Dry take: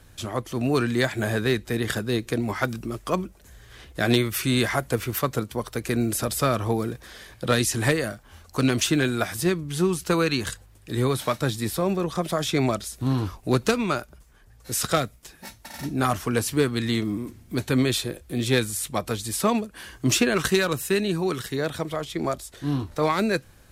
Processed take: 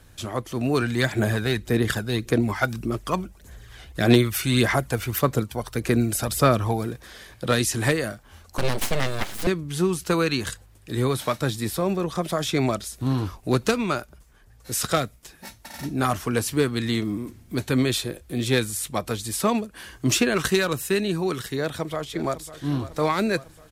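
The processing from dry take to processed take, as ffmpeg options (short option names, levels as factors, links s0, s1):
-filter_complex "[0:a]asplit=3[s0][s1][s2];[s0]afade=t=out:st=0.81:d=0.02[s3];[s1]aphaser=in_gain=1:out_gain=1:delay=1.4:decay=0.44:speed=1.7:type=sinusoidal,afade=t=in:st=0.81:d=0.02,afade=t=out:st=6.85:d=0.02[s4];[s2]afade=t=in:st=6.85:d=0.02[s5];[s3][s4][s5]amix=inputs=3:normalize=0,asettb=1/sr,asplit=3[s6][s7][s8];[s6]atrim=end=8.584[s9];[s7]atrim=start=8.58:end=9.47,asetpts=PTS-STARTPTS,afade=t=in:d=0.004:c=qsin,afade=t=out:st=0.886:d=0.004:c=qsin,aeval=exprs='abs(val(0))':c=same[s10];[s8]atrim=start=9.466[s11];[s9][s10]acrossfade=d=0.004:c1=hsin:c2=qsin[s12];[s12][s11]acrossfade=d=0.004:c1=qsin:c2=hsin,asplit=2[s13][s14];[s14]afade=t=in:st=21.58:d=0.01,afade=t=out:st=22.54:d=0.01,aecho=0:1:550|1100|1650|2200|2750|3300:0.188365|0.113019|0.0678114|0.0406868|0.0244121|0.0146473[s15];[s13][s15]amix=inputs=2:normalize=0"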